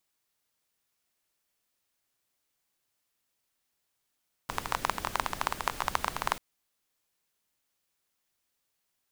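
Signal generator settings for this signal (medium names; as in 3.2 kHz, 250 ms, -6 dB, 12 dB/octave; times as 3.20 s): rain from filtered ticks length 1.89 s, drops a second 16, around 1 kHz, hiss -8 dB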